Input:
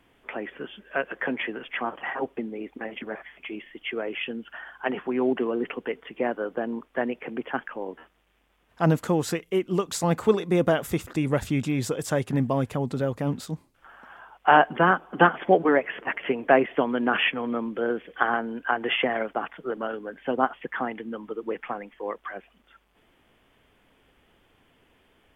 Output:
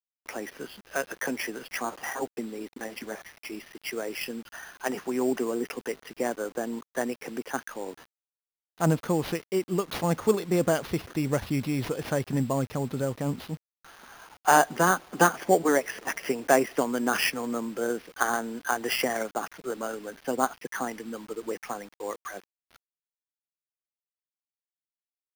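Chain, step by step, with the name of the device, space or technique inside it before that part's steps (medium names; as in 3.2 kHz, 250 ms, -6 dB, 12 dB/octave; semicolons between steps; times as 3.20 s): early 8-bit sampler (sample-rate reducer 7.8 kHz, jitter 0%; bit crusher 8-bit); trim -2.5 dB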